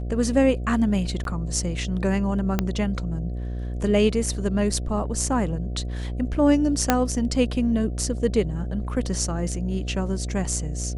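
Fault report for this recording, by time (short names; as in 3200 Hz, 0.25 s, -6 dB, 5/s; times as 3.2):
buzz 60 Hz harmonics 12 -29 dBFS
1.24–1.25 gap 12 ms
2.59 pop -8 dBFS
6.9 pop -2 dBFS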